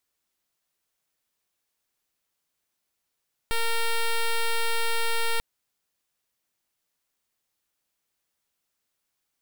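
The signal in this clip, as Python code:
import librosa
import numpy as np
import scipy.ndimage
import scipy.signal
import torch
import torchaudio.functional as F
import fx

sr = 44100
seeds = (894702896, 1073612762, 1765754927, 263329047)

y = fx.pulse(sr, length_s=1.89, hz=460.0, level_db=-23.5, duty_pct=7)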